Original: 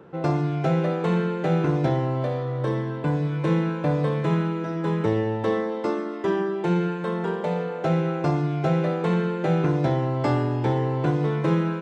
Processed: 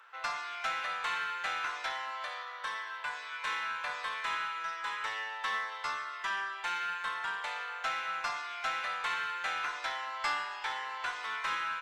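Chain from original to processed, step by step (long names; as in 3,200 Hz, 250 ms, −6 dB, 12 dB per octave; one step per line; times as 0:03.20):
high-pass filter 1,200 Hz 24 dB per octave
in parallel at −5.5 dB: asymmetric clip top −39 dBFS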